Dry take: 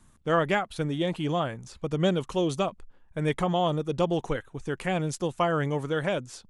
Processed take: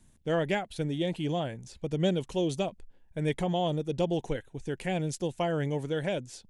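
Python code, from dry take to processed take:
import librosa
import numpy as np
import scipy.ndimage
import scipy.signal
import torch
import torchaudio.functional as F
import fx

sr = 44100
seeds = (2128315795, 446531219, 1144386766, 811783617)

y = fx.peak_eq(x, sr, hz=1200.0, db=-14.5, octaves=0.55)
y = F.gain(torch.from_numpy(y), -2.0).numpy()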